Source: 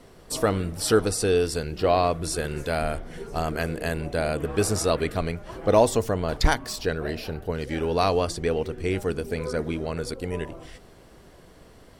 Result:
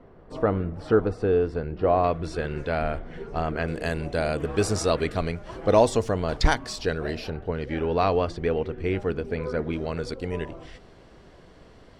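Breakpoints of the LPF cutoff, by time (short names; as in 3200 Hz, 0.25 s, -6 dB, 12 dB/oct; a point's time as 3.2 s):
1400 Hz
from 2.04 s 2900 Hz
from 3.68 s 7100 Hz
from 7.3 s 2900 Hz
from 9.73 s 5200 Hz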